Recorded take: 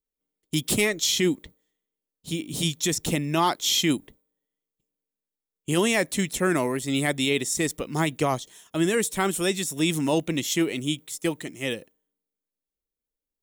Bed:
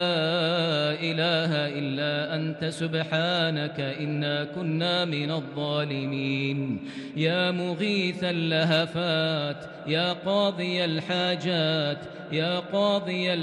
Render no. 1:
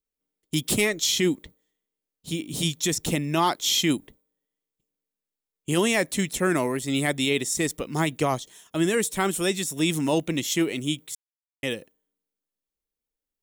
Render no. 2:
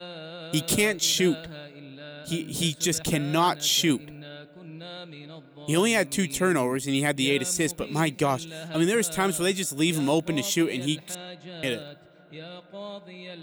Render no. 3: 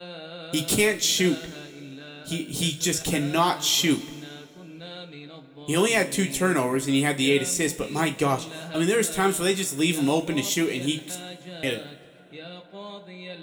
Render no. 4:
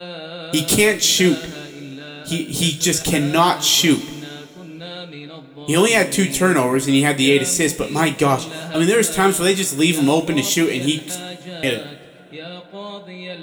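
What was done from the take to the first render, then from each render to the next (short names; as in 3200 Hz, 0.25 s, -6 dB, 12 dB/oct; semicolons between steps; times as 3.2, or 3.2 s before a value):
11.15–11.63 mute
add bed -15 dB
two-slope reverb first 0.22 s, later 2.1 s, from -21 dB, DRR 3.5 dB
gain +7 dB; limiter -3 dBFS, peak gain reduction 1 dB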